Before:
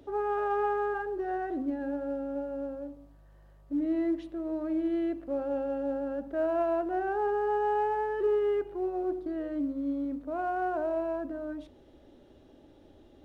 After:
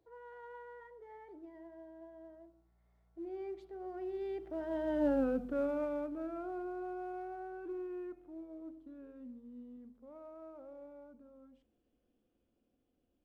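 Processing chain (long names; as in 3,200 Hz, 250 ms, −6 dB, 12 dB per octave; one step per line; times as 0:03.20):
source passing by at 0:05.15, 50 m/s, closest 11 metres
dynamic equaliser 730 Hz, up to −6 dB, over −49 dBFS, Q 0.74
level +6 dB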